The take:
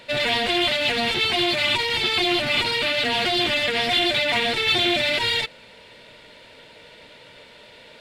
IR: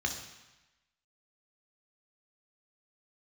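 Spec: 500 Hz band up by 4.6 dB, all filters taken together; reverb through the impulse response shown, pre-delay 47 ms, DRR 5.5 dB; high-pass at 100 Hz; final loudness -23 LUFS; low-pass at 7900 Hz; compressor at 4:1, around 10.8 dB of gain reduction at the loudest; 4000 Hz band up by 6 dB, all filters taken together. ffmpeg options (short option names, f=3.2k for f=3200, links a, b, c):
-filter_complex "[0:a]highpass=100,lowpass=7.9k,equalizer=f=500:t=o:g=6,equalizer=f=4k:t=o:g=7.5,acompressor=threshold=-25dB:ratio=4,asplit=2[a][b];[1:a]atrim=start_sample=2205,adelay=47[c];[b][c]afir=irnorm=-1:irlink=0,volume=-11dB[d];[a][d]amix=inputs=2:normalize=0"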